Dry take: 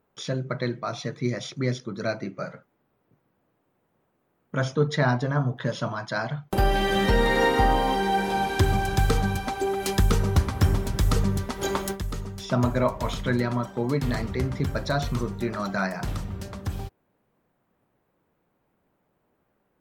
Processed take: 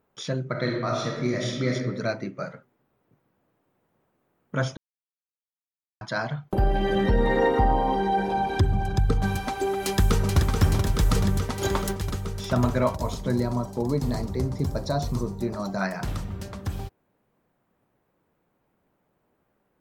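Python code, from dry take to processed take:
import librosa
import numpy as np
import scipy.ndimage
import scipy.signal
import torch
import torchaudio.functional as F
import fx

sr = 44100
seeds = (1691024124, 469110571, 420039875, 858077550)

y = fx.reverb_throw(x, sr, start_s=0.51, length_s=1.23, rt60_s=1.1, drr_db=-1.0)
y = fx.envelope_sharpen(y, sr, power=1.5, at=(6.52, 9.22))
y = fx.echo_throw(y, sr, start_s=9.85, length_s=0.53, ms=430, feedback_pct=80, wet_db=-5.5)
y = fx.band_shelf(y, sr, hz=2100.0, db=-10.5, octaves=1.7, at=(12.95, 15.81))
y = fx.edit(y, sr, fx.silence(start_s=4.77, length_s=1.24), tone=tone)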